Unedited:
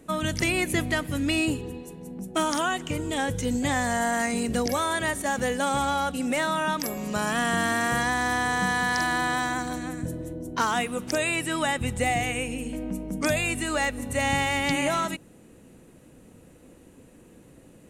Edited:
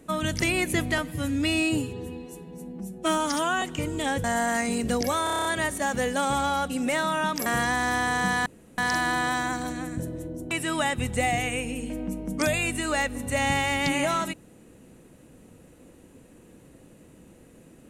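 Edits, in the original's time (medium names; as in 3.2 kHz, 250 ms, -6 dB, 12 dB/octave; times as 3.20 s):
0.98–2.74 s: stretch 1.5×
3.36–3.89 s: delete
4.89 s: stutter 0.03 s, 8 plays
6.90–7.84 s: delete
8.84 s: insert room tone 0.32 s
10.57–11.34 s: delete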